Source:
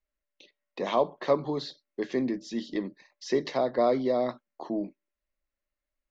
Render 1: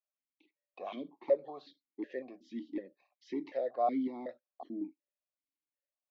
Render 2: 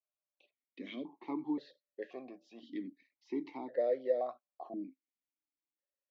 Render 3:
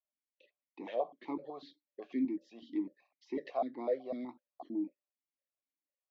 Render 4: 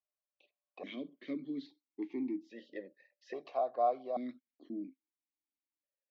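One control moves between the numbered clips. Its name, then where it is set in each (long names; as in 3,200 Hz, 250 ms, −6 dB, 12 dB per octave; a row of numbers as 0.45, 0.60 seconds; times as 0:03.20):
formant filter that steps through the vowels, speed: 5.4, 1.9, 8, 1.2 Hertz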